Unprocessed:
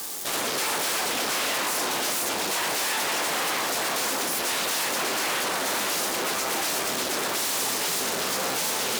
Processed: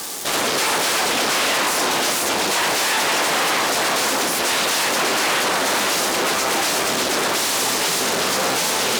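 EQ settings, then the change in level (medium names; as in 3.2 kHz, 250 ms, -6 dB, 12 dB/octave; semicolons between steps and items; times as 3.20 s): treble shelf 12 kHz -10 dB; +8.0 dB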